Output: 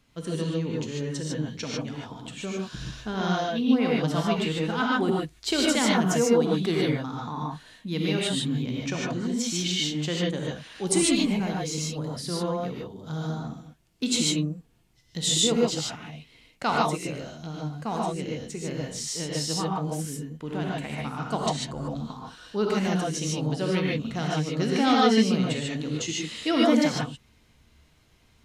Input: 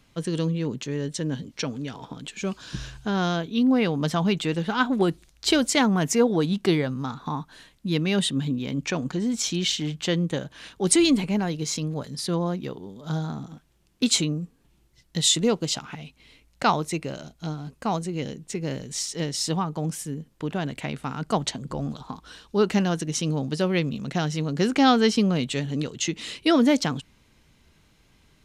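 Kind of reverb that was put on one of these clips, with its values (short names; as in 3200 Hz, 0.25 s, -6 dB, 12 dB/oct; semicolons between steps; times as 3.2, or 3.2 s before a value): non-linear reverb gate 0.17 s rising, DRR -3.5 dB; gain -6 dB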